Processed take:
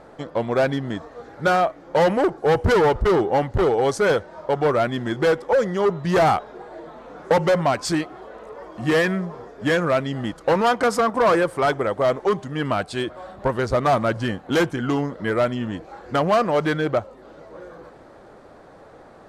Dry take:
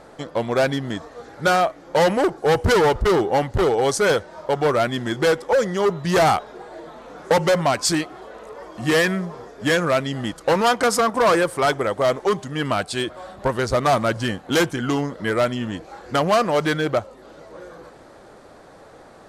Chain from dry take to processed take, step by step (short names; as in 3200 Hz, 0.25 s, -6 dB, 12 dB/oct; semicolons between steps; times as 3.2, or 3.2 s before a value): high shelf 3400 Hz -10 dB